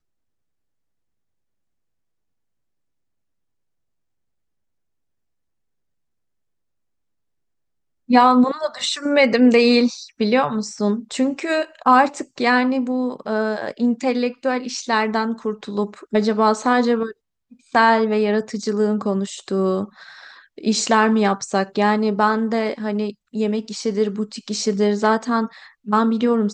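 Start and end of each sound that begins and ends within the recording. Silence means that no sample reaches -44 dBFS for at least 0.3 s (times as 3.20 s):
8.09–17.12 s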